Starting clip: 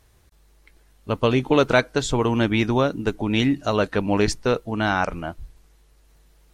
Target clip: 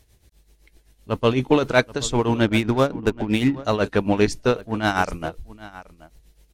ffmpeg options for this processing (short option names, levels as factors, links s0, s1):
-filter_complex "[0:a]tremolo=f=7.8:d=0.7,acrossover=split=1500[s0][s1];[s0]adynamicsmooth=sensitivity=8:basefreq=890[s2];[s2][s1]amix=inputs=2:normalize=0,aecho=1:1:778:0.112,asplit=2[s3][s4];[s4]asoftclip=type=tanh:threshold=0.211,volume=0.376[s5];[s3][s5]amix=inputs=2:normalize=0,asettb=1/sr,asplit=3[s6][s7][s8];[s6]atrim=end=2.464[s9];[s7]atrim=start=2.46:end=3.65,asetpts=PTS-STARTPTS,afade=t=in:d=0.004:c=qsin,afade=t=out:st=1.186:d=0.004:c=qsin,adynamicsmooth=sensitivity=6.5:basefreq=1900[s10];[s8]atrim=start=3.646[s11];[s9][s10]acrossfade=d=0.004:c1=hsin:c2=qsin[s12];[s12][s11]acrossfade=d=0.004:c1=qsin:c2=hsin,asettb=1/sr,asplit=3[s13][s14][s15];[s13]atrim=end=4.614[s16];[s14]atrim=start=4.61:end=5.29,asetpts=PTS-STARTPTS,afade=t=in:d=0.004:c=qsin,afade=t=out:st=0.676:d=0.004:c=qsin,adynamicequalizer=threshold=0.00891:dfrequency=4800:dqfactor=0.7:tfrequency=4800:tqfactor=0.7:attack=5:release=100:ratio=0.375:range=3.5:mode=boostabove:tftype=highshelf[s17];[s15]atrim=start=5.286[s18];[s16][s17]acrossfade=d=0.004:c1=hsin:c2=qsin[s19];[s19][s18]acrossfade=d=0.004:c1=qsin:c2=hsin,volume=1.12"